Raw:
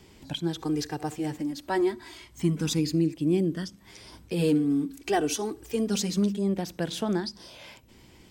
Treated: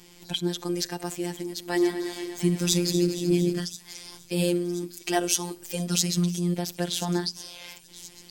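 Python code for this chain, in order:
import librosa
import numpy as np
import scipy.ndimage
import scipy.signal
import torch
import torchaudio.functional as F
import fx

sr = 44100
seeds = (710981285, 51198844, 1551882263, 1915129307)

y = fx.reverse_delay_fb(x, sr, ms=116, feedback_pct=80, wet_db=-10.5, at=(1.45, 3.6))
y = fx.high_shelf(y, sr, hz=3100.0, db=10.0)
y = fx.echo_wet_highpass(y, sr, ms=1029, feedback_pct=59, hz=4500.0, wet_db=-14.0)
y = fx.robotise(y, sr, hz=175.0)
y = y * librosa.db_to_amplitude(1.5)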